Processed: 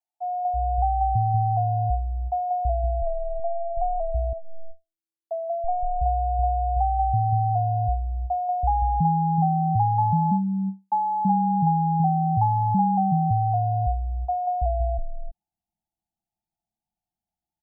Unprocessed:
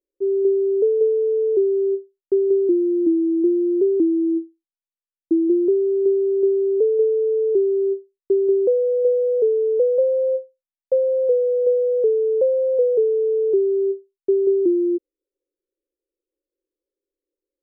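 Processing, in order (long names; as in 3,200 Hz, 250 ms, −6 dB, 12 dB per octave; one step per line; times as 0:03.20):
phaser with its sweep stopped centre 560 Hz, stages 4
ring modulation 330 Hz
multiband delay without the direct sound highs, lows 330 ms, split 410 Hz
level +1 dB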